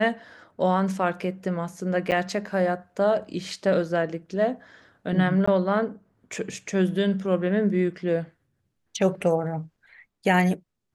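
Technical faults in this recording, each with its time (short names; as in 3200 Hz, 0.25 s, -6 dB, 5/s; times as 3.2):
2.11–2.12 gap 8.9 ms
5.46–5.47 gap 15 ms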